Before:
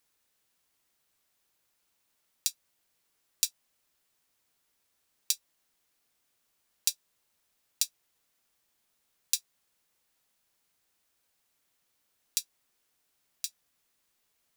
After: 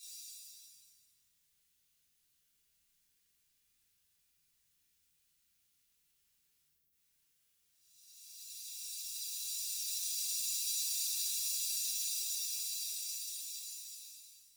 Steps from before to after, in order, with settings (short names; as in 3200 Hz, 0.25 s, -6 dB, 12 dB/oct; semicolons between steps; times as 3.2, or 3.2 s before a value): Paulstretch 14×, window 0.50 s, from 2.64; passive tone stack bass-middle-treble 6-0-2; in parallel at +1.5 dB: compressor, threshold -58 dBFS, peak gain reduction 14 dB; on the sum: spectral delete 6.68–6.91, 800–11000 Hz; shimmer reverb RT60 1.1 s, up +7 st, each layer -8 dB, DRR -10.5 dB; gain -3 dB